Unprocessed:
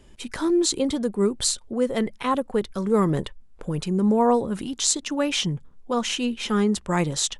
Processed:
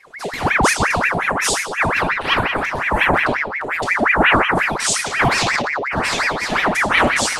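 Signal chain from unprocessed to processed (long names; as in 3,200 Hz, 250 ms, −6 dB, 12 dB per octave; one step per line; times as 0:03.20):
rectangular room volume 560 cubic metres, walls mixed, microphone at 2.2 metres
0:05.28–0:05.98: transient designer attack −9 dB, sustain +9 dB
ring modulator whose carrier an LFO sweeps 1,300 Hz, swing 70%, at 5.6 Hz
level +2.5 dB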